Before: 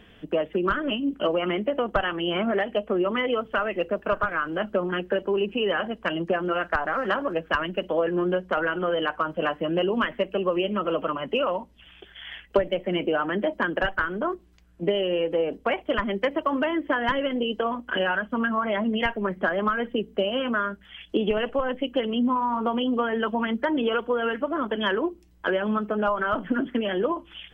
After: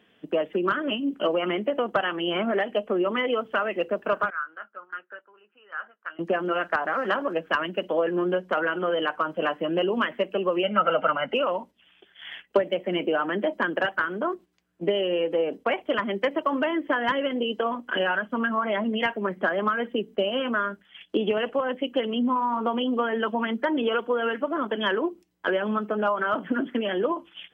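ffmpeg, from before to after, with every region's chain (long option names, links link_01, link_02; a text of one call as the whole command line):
ffmpeg -i in.wav -filter_complex "[0:a]asettb=1/sr,asplit=3[link_01][link_02][link_03];[link_01]atrim=end=4.304[link_04];[link_02]atrim=start=4.3:end=6.19,asetpts=PTS-STARTPTS,afade=type=in:duration=0.004:curve=qsin,afade=type=out:start_time=1.886:duration=0.004:curve=qsin,bandpass=frequency=1400:width_type=q:width=6.3,asplit=2[link_05][link_06];[link_06]adelay=19,volume=-13.5dB[link_07];[link_05][link_07]amix=inputs=2:normalize=0,atrim=end_sample=83349[link_08];[link_03]atrim=start=6.186[link_09];[link_04][link_08]acrossfade=duration=0.004:curve1=hsin:curve2=qsin[link_10];[link_10][link_09]acrossfade=duration=0.004:curve1=qsin:curve2=hsin,asettb=1/sr,asplit=3[link_11][link_12][link_13];[link_11]atrim=end=10.634[link_14];[link_12]atrim=start=10.63:end=11.34,asetpts=PTS-STARTPTS,afade=type=in:duration=0.004:curve=qsin,afade=type=out:start_time=0.706:duration=0.004:curve=qsin,lowpass=frequency=2600:poles=1,equalizer=frequency=1700:width_type=o:width=1.3:gain=9.5,aecho=1:1:1.4:0.72,atrim=end_sample=31311[link_15];[link_13]atrim=start=11.336[link_16];[link_14][link_15]acrossfade=duration=0.004:curve1=hsin:curve2=qsin[link_17];[link_17][link_16]acrossfade=duration=0.004:curve1=qsin:curve2=hsin,highpass=190,agate=range=-8dB:threshold=-42dB:ratio=16:detection=peak" out.wav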